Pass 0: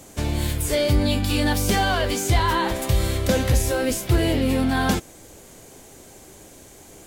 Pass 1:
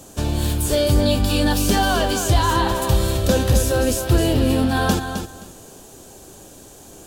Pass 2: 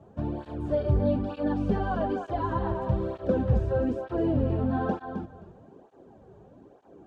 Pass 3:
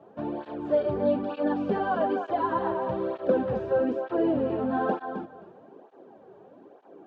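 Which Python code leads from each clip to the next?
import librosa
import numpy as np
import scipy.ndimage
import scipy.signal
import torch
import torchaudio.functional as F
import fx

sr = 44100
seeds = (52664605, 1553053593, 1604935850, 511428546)

y1 = fx.peak_eq(x, sr, hz=2100.0, db=-14.0, octaves=0.24)
y1 = fx.echo_feedback(y1, sr, ms=262, feedback_pct=19, wet_db=-8)
y1 = y1 * librosa.db_to_amplitude(2.5)
y2 = scipy.signal.sosfilt(scipy.signal.butter(2, 1000.0, 'lowpass', fs=sr, output='sos'), y1)
y2 = fx.flanger_cancel(y2, sr, hz=1.1, depth_ms=4.1)
y2 = y2 * librosa.db_to_amplitude(-4.0)
y3 = fx.bandpass_edges(y2, sr, low_hz=300.0, high_hz=3700.0)
y3 = y3 * librosa.db_to_amplitude(4.0)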